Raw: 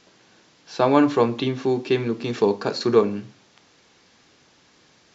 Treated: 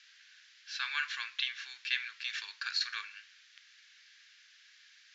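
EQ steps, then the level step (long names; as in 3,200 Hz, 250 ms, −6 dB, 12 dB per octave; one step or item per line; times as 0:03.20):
elliptic high-pass filter 1,600 Hz, stop band 60 dB
high-frequency loss of the air 100 metres
+2.0 dB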